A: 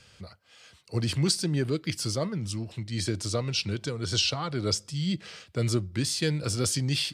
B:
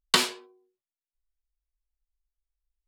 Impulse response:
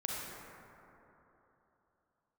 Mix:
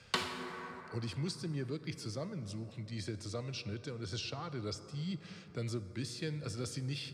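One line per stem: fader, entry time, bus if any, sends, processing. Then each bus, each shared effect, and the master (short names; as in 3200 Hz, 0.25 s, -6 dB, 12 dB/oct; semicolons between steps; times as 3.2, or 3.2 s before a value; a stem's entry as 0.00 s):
-12.5 dB, 0.00 s, send -13.5 dB, notch 3000 Hz, Q 13
-4.0 dB, 0.00 s, send -10 dB, auto duck -17 dB, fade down 0.35 s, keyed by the first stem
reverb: on, RT60 3.4 s, pre-delay 33 ms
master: LPF 3900 Hz 6 dB/oct; three-band squash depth 40%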